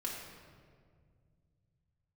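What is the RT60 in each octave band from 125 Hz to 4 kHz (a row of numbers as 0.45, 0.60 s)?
n/a, 3.0 s, 2.2 s, 1.7 s, 1.5 s, 1.2 s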